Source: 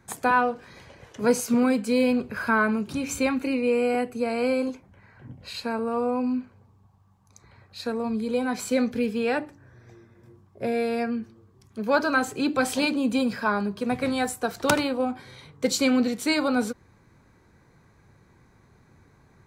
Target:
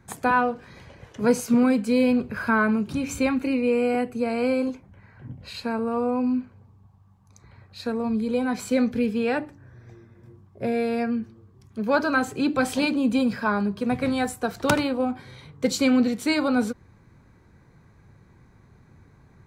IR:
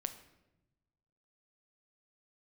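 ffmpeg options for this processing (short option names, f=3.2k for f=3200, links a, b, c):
-af "bass=f=250:g=5,treble=f=4k:g=-3"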